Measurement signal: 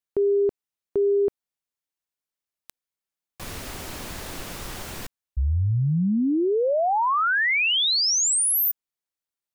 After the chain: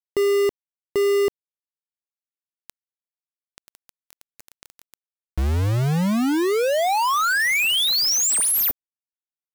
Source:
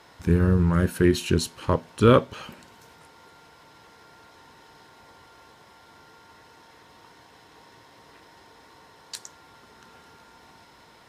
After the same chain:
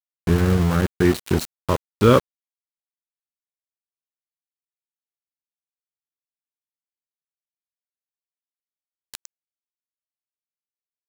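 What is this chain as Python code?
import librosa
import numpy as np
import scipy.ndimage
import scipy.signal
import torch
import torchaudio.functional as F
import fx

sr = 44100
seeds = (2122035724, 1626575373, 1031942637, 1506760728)

y = np.where(np.abs(x) >= 10.0 ** (-24.0 / 20.0), x, 0.0)
y = y * 10.0 ** (2.0 / 20.0)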